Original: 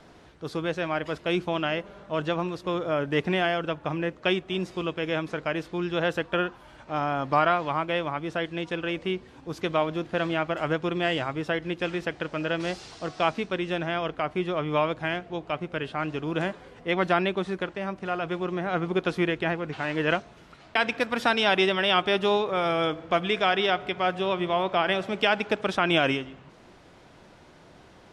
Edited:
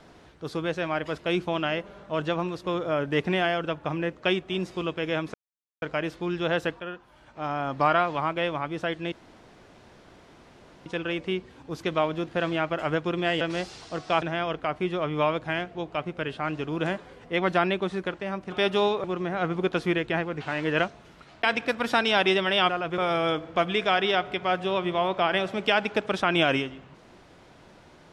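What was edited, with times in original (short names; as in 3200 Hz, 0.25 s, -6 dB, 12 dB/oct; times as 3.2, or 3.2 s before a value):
5.34 insert silence 0.48 s
6.32–7.41 fade in, from -12 dB
8.64 insert room tone 1.74 s
11.19–12.51 cut
13.32–13.77 cut
18.07–18.36 swap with 22.01–22.53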